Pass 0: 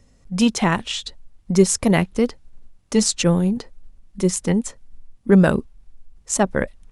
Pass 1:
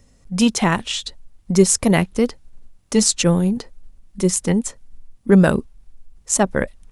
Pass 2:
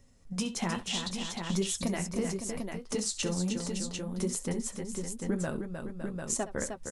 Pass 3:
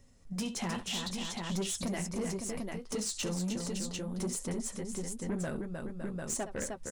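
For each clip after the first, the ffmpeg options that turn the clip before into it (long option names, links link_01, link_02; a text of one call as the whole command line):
ffmpeg -i in.wav -af "highshelf=frequency=8500:gain=7,volume=1dB" out.wav
ffmpeg -i in.wav -filter_complex "[0:a]acompressor=threshold=-21dB:ratio=6,flanger=delay=7.3:depth=7.9:regen=-39:speed=1.1:shape=sinusoidal,asplit=2[link_01][link_02];[link_02]aecho=0:1:67|308|560|746:0.178|0.473|0.316|0.531[link_03];[link_01][link_03]amix=inputs=2:normalize=0,volume=-4dB" out.wav
ffmpeg -i in.wav -af "asoftclip=type=tanh:threshold=-29dB" out.wav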